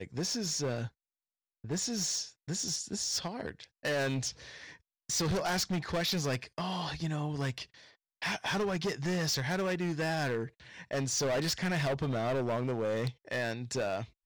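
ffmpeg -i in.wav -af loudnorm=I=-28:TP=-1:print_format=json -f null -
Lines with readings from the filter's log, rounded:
"input_i" : "-33.1",
"input_tp" : "-25.4",
"input_lra" : "2.4",
"input_thresh" : "-43.5",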